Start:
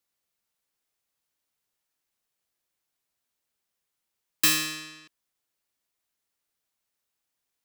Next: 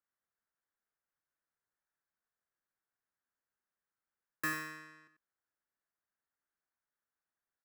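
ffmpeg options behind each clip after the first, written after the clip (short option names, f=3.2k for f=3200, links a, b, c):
-af "highshelf=f=2.3k:t=q:w=3:g=-12,aecho=1:1:92:0.299,volume=-9dB"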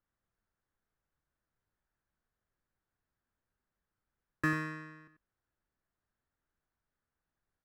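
-af "aemphasis=mode=reproduction:type=riaa,volume=4.5dB"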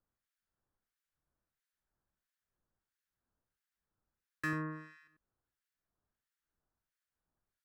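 -filter_complex "[0:a]acrossover=split=1500[a][b];[a]aeval=exprs='val(0)*(1-1/2+1/2*cos(2*PI*1.5*n/s))':c=same[c];[b]aeval=exprs='val(0)*(1-1/2-1/2*cos(2*PI*1.5*n/s))':c=same[d];[c][d]amix=inputs=2:normalize=0,volume=1.5dB"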